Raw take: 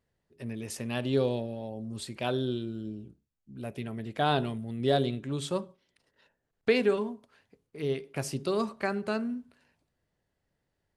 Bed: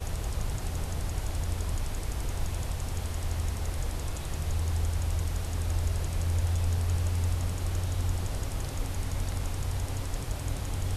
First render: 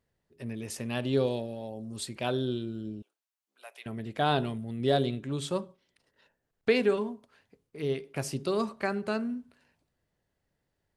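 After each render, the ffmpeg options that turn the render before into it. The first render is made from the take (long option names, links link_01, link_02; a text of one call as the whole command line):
ffmpeg -i in.wav -filter_complex "[0:a]asettb=1/sr,asplit=3[link_01][link_02][link_03];[link_01]atrim=end=1.264[link_04];[link_02]atrim=start=1.26:end=2.06,asetpts=PTS-STARTPTS,afade=type=in:duration=0.004:curve=qsin,afade=type=out:start_time=0.796:duration=0.004:curve=qsin,bass=frequency=250:gain=-3,treble=frequency=4000:gain=5[link_05];[link_03]atrim=start=2.056[link_06];[link_04][link_05]acrossfade=duration=0.004:curve1=hsin:curve2=qsin[link_07];[link_07][link_06]acrossfade=duration=0.004:curve1=qsin:curve2=hsin,asettb=1/sr,asplit=3[link_08][link_09][link_10];[link_08]atrim=end=3.024[link_11];[link_09]atrim=start=3.02:end=3.86,asetpts=PTS-STARTPTS,afade=type=in:duration=0.004:curve=qsin,afade=type=out:start_time=0.836:duration=0.004:curve=qsin,highpass=frequency=770:width=0.5412,highpass=frequency=770:width=1.3066[link_12];[link_10]atrim=start=3.856[link_13];[link_11][link_12]acrossfade=duration=0.004:curve1=hsin:curve2=qsin[link_14];[link_14][link_13]acrossfade=duration=0.004:curve1=qsin:curve2=hsin" out.wav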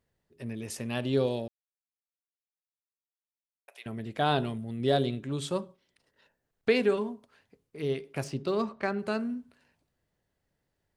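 ffmpeg -i in.wav -filter_complex "[0:a]asettb=1/sr,asplit=3[link_01][link_02][link_03];[link_01]atrim=end=8.244[link_04];[link_02]atrim=start=8.24:end=8.99,asetpts=PTS-STARTPTS,afade=type=in:duration=0.004:curve=qsin,afade=type=out:start_time=0.746:duration=0.004:curve=qsin,adynamicsmooth=sensitivity=4.5:basefreq=4200[link_05];[link_03]atrim=start=8.986[link_06];[link_04][link_05]acrossfade=duration=0.004:curve1=hsin:curve2=qsin[link_07];[link_07][link_06]acrossfade=duration=0.004:curve1=qsin:curve2=hsin,asplit=3[link_08][link_09][link_10];[link_08]atrim=end=1.48,asetpts=PTS-STARTPTS,afade=type=out:start_time=1.476:duration=0.004:curve=hsin[link_11];[link_09]atrim=start=1.48:end=3.68,asetpts=PTS-STARTPTS,volume=0[link_12];[link_10]atrim=start=3.68,asetpts=PTS-STARTPTS,afade=type=in:duration=0.004:curve=hsin[link_13];[link_11][link_12][link_13]concat=n=3:v=0:a=1" out.wav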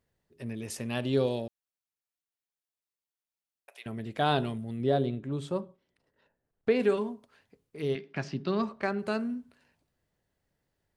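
ffmpeg -i in.wav -filter_complex "[0:a]asplit=3[link_01][link_02][link_03];[link_01]afade=type=out:start_time=4.82:duration=0.02[link_04];[link_02]highshelf=frequency=2000:gain=-12,afade=type=in:start_time=4.82:duration=0.02,afade=type=out:start_time=6.79:duration=0.02[link_05];[link_03]afade=type=in:start_time=6.79:duration=0.02[link_06];[link_04][link_05][link_06]amix=inputs=3:normalize=0,asettb=1/sr,asplit=3[link_07][link_08][link_09];[link_07]atrim=end=7.954[link_10];[link_08]atrim=start=7.95:end=8.63,asetpts=PTS-STARTPTS,afade=type=in:duration=0.004:curve=qsin,afade=type=out:start_time=0.676:duration=0.004:curve=qsin,highpass=120,equalizer=frequency=190:width_type=q:width=4:gain=8,equalizer=frequency=490:width_type=q:width=4:gain=-9,equalizer=frequency=1700:width_type=q:width=4:gain=6,lowpass=frequency=5500:width=0.5412,lowpass=frequency=5500:width=1.3066[link_11];[link_09]atrim=start=8.626[link_12];[link_10][link_11]acrossfade=duration=0.004:curve1=hsin:curve2=qsin[link_13];[link_13][link_12]acrossfade=duration=0.004:curve1=qsin:curve2=hsin" out.wav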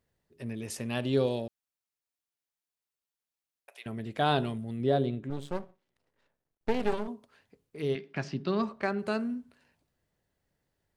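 ffmpeg -i in.wav -filter_complex "[0:a]asettb=1/sr,asplit=3[link_01][link_02][link_03];[link_01]atrim=end=5.304[link_04];[link_02]atrim=start=5.3:end=7.08,asetpts=PTS-STARTPTS,afade=type=in:duration=0.004:curve=qsin,afade=type=out:start_time=1.776:duration=0.004:curve=qsin,aeval=exprs='max(val(0),0)':channel_layout=same[link_05];[link_03]atrim=start=7.076[link_06];[link_04][link_05]acrossfade=duration=0.004:curve1=hsin:curve2=qsin[link_07];[link_07][link_06]acrossfade=duration=0.004:curve1=qsin:curve2=hsin" out.wav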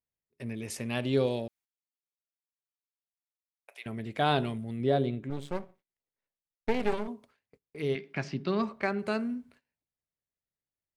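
ffmpeg -i in.wav -af "agate=range=-21dB:threshold=-58dB:ratio=16:detection=peak,equalizer=frequency=2200:width_type=o:width=0.28:gain=6" out.wav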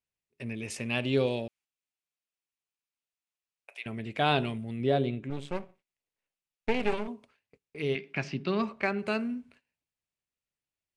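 ffmpeg -i in.wav -af "lowpass=frequency=10000:width=0.5412,lowpass=frequency=10000:width=1.3066,equalizer=frequency=2600:width_type=o:width=0.47:gain=7.5" out.wav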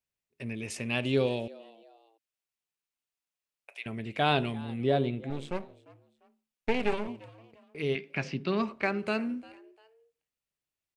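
ffmpeg -i in.wav -filter_complex "[0:a]asplit=3[link_01][link_02][link_03];[link_02]adelay=348,afreqshift=110,volume=-22dB[link_04];[link_03]adelay=696,afreqshift=220,volume=-31.9dB[link_05];[link_01][link_04][link_05]amix=inputs=3:normalize=0" out.wav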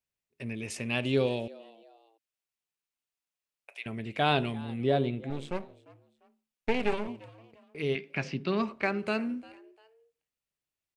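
ffmpeg -i in.wav -af anull out.wav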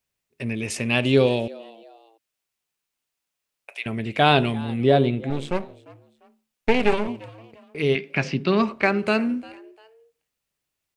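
ffmpeg -i in.wav -af "volume=9dB,alimiter=limit=-3dB:level=0:latency=1" out.wav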